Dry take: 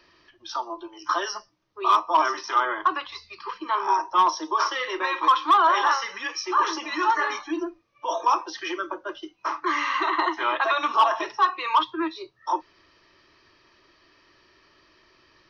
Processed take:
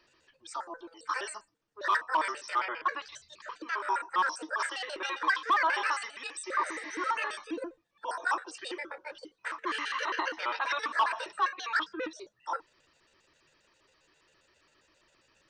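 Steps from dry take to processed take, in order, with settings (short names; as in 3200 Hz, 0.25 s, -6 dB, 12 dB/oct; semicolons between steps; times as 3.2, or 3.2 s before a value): trilling pitch shifter +7 st, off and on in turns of 67 ms; spectral repair 6.56–7.07, 1600–5800 Hz; gain -8 dB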